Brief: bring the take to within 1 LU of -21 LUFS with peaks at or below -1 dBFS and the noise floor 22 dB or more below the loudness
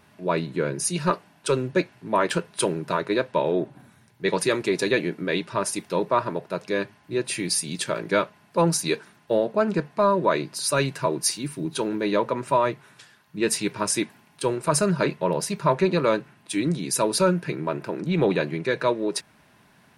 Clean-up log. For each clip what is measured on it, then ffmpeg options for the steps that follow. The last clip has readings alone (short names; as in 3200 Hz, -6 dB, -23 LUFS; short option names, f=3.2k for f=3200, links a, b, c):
loudness -25.0 LUFS; peak -8.5 dBFS; loudness target -21.0 LUFS
-> -af "volume=4dB"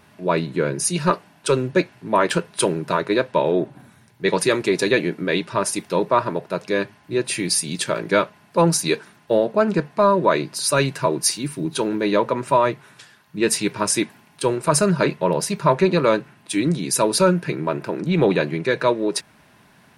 loudness -21.0 LUFS; peak -4.5 dBFS; noise floor -54 dBFS